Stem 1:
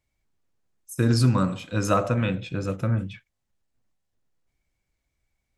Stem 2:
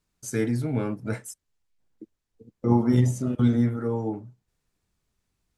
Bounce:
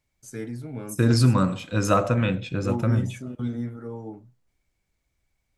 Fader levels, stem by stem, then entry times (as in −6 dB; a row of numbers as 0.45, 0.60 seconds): +1.5, −8.5 decibels; 0.00, 0.00 seconds